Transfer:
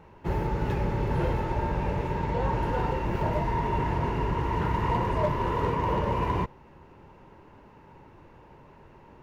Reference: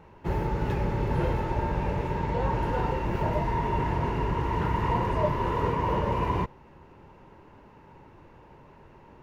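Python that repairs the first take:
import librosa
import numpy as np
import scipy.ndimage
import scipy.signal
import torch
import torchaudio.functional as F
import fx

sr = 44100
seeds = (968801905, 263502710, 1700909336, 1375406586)

y = fx.fix_declip(x, sr, threshold_db=-18.5)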